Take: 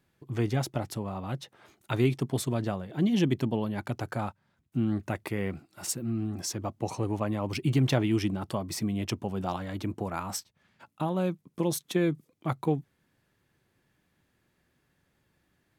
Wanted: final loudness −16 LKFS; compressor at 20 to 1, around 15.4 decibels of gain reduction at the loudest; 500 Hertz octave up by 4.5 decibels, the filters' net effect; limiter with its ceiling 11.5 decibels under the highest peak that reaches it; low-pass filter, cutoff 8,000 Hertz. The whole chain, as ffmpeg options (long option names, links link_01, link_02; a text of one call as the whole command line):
ffmpeg -i in.wav -af "lowpass=8000,equalizer=frequency=500:width_type=o:gain=6,acompressor=threshold=-33dB:ratio=20,volume=27.5dB,alimiter=limit=-5.5dB:level=0:latency=1" out.wav